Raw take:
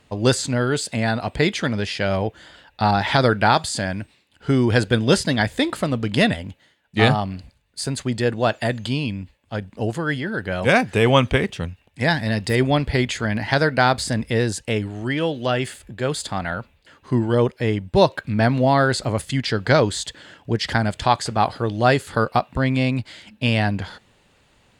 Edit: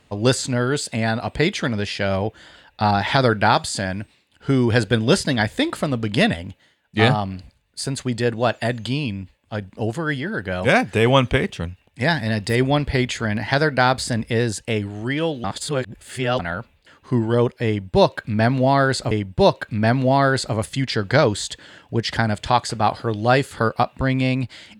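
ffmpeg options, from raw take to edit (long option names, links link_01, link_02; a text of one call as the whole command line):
ffmpeg -i in.wav -filter_complex "[0:a]asplit=4[link_01][link_02][link_03][link_04];[link_01]atrim=end=15.442[link_05];[link_02]atrim=start=15.438:end=16.392,asetpts=PTS-STARTPTS,areverse[link_06];[link_03]atrim=start=16.388:end=19.112[link_07];[link_04]atrim=start=17.668[link_08];[link_05][link_06]acrossfade=duration=0.004:curve1=hsin:curve2=hsin[link_09];[link_09][link_07]acrossfade=duration=0.004:curve1=hsin:curve2=hsin[link_10];[link_10][link_08]acrossfade=duration=0.004:curve1=hsin:curve2=hsin" out.wav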